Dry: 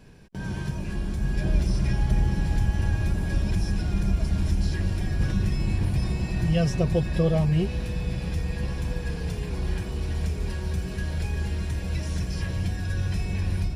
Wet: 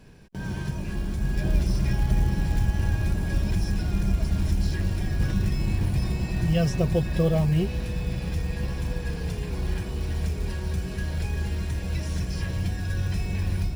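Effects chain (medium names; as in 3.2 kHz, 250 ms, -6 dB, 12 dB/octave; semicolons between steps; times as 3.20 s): short-mantissa float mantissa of 4-bit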